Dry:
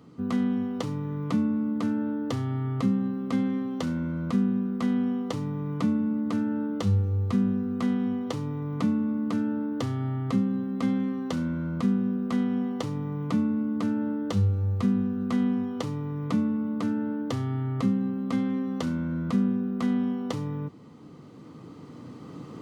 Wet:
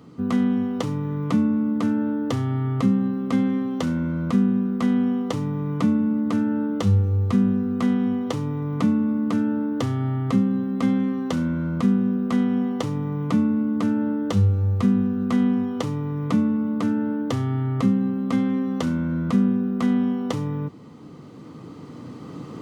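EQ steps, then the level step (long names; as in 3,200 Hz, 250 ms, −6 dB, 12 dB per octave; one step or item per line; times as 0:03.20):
dynamic equaliser 4,400 Hz, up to −3 dB, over −60 dBFS, Q 3.3
+5.0 dB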